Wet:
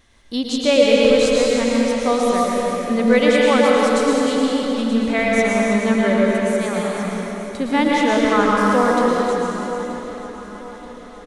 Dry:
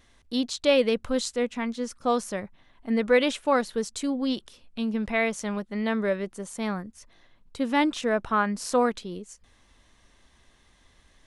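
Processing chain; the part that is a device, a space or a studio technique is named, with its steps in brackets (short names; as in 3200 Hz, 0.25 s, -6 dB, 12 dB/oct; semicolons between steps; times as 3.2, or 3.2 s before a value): 8.14–8.89 de-esser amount 85%; cave (echo 0.312 s -8 dB; reverb RT60 3.2 s, pre-delay 0.104 s, DRR -4 dB); feedback echo 0.929 s, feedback 49%, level -15.5 dB; gain +3.5 dB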